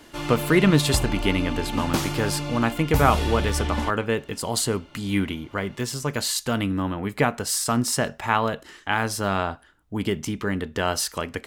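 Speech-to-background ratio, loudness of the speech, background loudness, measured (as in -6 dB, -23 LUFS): 4.0 dB, -24.5 LUFS, -28.5 LUFS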